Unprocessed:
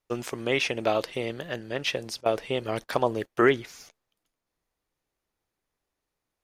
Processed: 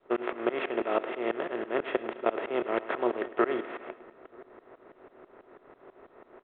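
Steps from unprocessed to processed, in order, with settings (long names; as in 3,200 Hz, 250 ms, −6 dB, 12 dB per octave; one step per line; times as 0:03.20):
compressor on every frequency bin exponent 0.4
three-way crossover with the lows and the highs turned down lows −23 dB, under 210 Hz, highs −16 dB, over 2,100 Hz
in parallel at −4.5 dB: slack as between gear wheels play −37.5 dBFS
on the sum: tuned comb filter 370 Hz, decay 0.33 s, harmonics odd, mix 60%
slap from a distant wall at 160 metres, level −26 dB
shaped tremolo saw up 6.1 Hz, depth 100%
on a send: repeating echo 105 ms, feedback 59%, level −16.5 dB
on the sum: low-pass that shuts in the quiet parts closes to 1,600 Hz, open at −24.5 dBFS
mu-law 64 kbit/s 8,000 Hz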